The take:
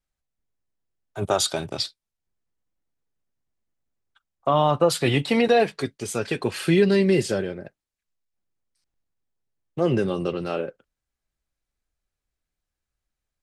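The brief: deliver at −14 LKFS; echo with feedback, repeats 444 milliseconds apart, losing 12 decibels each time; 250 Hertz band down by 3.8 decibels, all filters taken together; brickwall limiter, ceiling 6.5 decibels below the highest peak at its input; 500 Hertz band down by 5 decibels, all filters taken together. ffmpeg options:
ffmpeg -i in.wav -af "equalizer=frequency=250:width_type=o:gain=-4,equalizer=frequency=500:width_type=o:gain=-5,alimiter=limit=-16.5dB:level=0:latency=1,aecho=1:1:444|888|1332:0.251|0.0628|0.0157,volume=14.5dB" out.wav

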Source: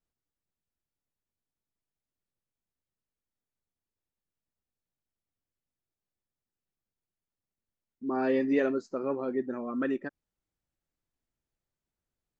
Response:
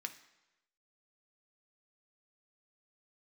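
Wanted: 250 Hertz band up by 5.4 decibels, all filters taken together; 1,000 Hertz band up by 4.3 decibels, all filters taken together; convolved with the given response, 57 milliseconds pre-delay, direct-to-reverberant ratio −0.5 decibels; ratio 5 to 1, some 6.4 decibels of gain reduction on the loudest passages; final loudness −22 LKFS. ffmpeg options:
-filter_complex "[0:a]equalizer=frequency=250:width_type=o:gain=5.5,equalizer=frequency=1000:width_type=o:gain=5.5,acompressor=threshold=-25dB:ratio=5,asplit=2[link_01][link_02];[1:a]atrim=start_sample=2205,adelay=57[link_03];[link_02][link_03]afir=irnorm=-1:irlink=0,volume=2dB[link_04];[link_01][link_04]amix=inputs=2:normalize=0,volume=6.5dB"

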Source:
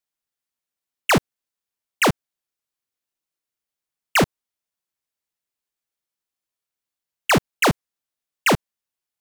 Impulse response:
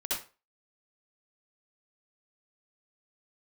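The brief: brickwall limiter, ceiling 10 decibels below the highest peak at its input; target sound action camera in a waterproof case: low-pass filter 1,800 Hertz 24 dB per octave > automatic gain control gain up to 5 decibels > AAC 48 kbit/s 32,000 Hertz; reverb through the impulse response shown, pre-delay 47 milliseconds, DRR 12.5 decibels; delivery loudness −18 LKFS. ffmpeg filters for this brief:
-filter_complex "[0:a]alimiter=level_in=0.5dB:limit=-24dB:level=0:latency=1,volume=-0.5dB,asplit=2[link_01][link_02];[1:a]atrim=start_sample=2205,adelay=47[link_03];[link_02][link_03]afir=irnorm=-1:irlink=0,volume=-17.5dB[link_04];[link_01][link_04]amix=inputs=2:normalize=0,lowpass=frequency=1800:width=0.5412,lowpass=frequency=1800:width=1.3066,dynaudnorm=maxgain=5dB,volume=15dB" -ar 32000 -c:a aac -b:a 48k

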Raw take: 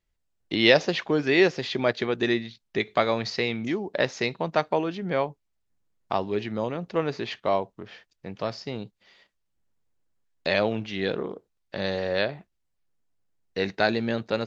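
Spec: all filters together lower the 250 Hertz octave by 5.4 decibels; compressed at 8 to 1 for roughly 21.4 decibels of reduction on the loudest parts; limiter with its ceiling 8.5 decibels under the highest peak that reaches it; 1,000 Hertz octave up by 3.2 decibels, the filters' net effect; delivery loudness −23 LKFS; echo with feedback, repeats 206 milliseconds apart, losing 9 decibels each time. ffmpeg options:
ffmpeg -i in.wav -af "equalizer=frequency=250:width_type=o:gain=-8.5,equalizer=frequency=1000:width_type=o:gain=5,acompressor=threshold=-35dB:ratio=8,alimiter=level_in=2dB:limit=-24dB:level=0:latency=1,volume=-2dB,aecho=1:1:206|412|618|824:0.355|0.124|0.0435|0.0152,volume=18dB" out.wav

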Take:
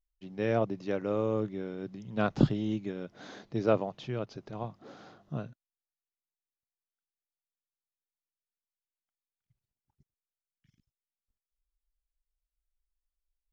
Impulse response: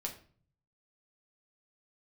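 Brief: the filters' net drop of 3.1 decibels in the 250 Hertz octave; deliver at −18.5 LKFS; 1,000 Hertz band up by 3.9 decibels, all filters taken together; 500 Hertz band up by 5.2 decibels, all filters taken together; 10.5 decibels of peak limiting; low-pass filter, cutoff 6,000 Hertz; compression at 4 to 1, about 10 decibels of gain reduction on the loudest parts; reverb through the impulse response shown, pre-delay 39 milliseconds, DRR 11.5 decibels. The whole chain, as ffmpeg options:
-filter_complex "[0:a]lowpass=6000,equalizer=frequency=250:width_type=o:gain=-7,equalizer=frequency=500:width_type=o:gain=7,equalizer=frequency=1000:width_type=o:gain=3,acompressor=threshold=-27dB:ratio=4,alimiter=level_in=1.5dB:limit=-24dB:level=0:latency=1,volume=-1.5dB,asplit=2[link_01][link_02];[1:a]atrim=start_sample=2205,adelay=39[link_03];[link_02][link_03]afir=irnorm=-1:irlink=0,volume=-11.5dB[link_04];[link_01][link_04]amix=inputs=2:normalize=0,volume=19.5dB"

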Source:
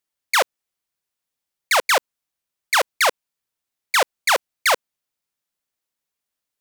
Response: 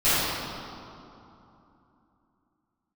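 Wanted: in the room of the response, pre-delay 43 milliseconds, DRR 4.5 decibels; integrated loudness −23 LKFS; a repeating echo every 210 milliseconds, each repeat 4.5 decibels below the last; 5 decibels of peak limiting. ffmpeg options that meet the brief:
-filter_complex "[0:a]alimiter=limit=-15.5dB:level=0:latency=1,aecho=1:1:210|420|630|840|1050|1260|1470|1680|1890:0.596|0.357|0.214|0.129|0.0772|0.0463|0.0278|0.0167|0.01,asplit=2[link_01][link_02];[1:a]atrim=start_sample=2205,adelay=43[link_03];[link_02][link_03]afir=irnorm=-1:irlink=0,volume=-23.5dB[link_04];[link_01][link_04]amix=inputs=2:normalize=0,volume=1dB"

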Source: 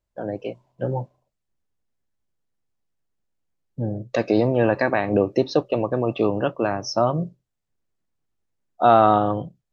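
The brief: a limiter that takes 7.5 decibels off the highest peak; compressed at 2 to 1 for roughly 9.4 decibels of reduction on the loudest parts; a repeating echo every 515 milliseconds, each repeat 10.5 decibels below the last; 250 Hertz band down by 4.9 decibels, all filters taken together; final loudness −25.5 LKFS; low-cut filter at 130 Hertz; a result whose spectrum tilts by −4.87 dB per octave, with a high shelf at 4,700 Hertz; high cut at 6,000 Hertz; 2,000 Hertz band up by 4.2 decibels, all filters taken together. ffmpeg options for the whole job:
ffmpeg -i in.wav -af "highpass=130,lowpass=6000,equalizer=frequency=250:width_type=o:gain=-6.5,equalizer=frequency=2000:width_type=o:gain=6.5,highshelf=frequency=4700:gain=-5.5,acompressor=threshold=-27dB:ratio=2,alimiter=limit=-19dB:level=0:latency=1,aecho=1:1:515|1030|1545:0.299|0.0896|0.0269,volume=6.5dB" out.wav

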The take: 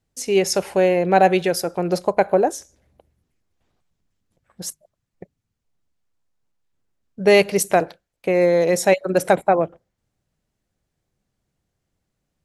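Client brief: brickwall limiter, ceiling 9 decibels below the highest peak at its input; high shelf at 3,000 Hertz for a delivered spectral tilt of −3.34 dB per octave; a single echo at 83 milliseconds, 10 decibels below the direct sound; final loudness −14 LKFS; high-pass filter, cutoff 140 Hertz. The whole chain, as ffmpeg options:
ffmpeg -i in.wav -af "highpass=140,highshelf=frequency=3000:gain=6,alimiter=limit=-10dB:level=0:latency=1,aecho=1:1:83:0.316,volume=7.5dB" out.wav

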